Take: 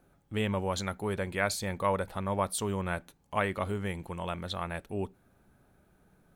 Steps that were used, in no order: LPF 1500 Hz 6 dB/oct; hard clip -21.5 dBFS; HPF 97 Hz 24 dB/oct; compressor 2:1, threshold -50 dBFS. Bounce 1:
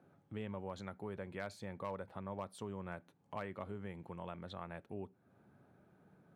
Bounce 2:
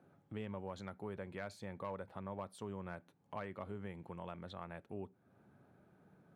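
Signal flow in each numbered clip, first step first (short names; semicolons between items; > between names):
LPF > hard clip > compressor > HPF; hard clip > HPF > compressor > LPF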